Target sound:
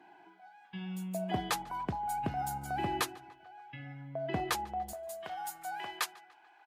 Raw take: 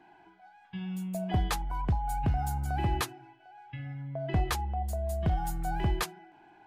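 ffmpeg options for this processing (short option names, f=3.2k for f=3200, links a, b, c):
-filter_complex "[0:a]asetnsamples=n=441:p=0,asendcmd='4.93 highpass f 870',highpass=210,asplit=2[a][b];[b]adelay=146,lowpass=f=3.8k:p=1,volume=-22.5dB,asplit=2[c][d];[d]adelay=146,lowpass=f=3.8k:p=1,volume=0.55,asplit=2[e][f];[f]adelay=146,lowpass=f=3.8k:p=1,volume=0.55,asplit=2[g][h];[h]adelay=146,lowpass=f=3.8k:p=1,volume=0.55[i];[a][c][e][g][i]amix=inputs=5:normalize=0"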